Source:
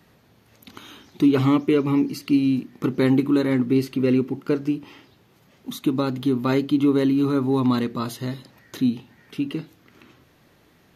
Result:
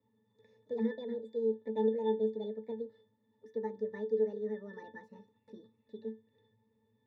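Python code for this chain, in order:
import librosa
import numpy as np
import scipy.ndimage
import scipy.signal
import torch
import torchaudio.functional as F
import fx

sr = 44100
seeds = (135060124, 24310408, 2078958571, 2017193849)

y = fx.speed_glide(x, sr, from_pct=175, to_pct=135)
y = fx.octave_resonator(y, sr, note='A', decay_s=0.19)
y = F.gain(torch.from_numpy(y), -5.5).numpy()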